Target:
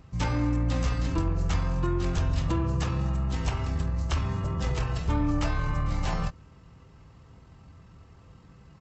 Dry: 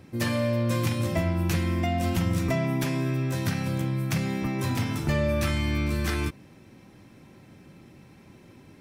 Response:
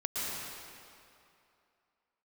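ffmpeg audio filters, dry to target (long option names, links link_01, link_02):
-af "asetrate=22050,aresample=44100,atempo=2"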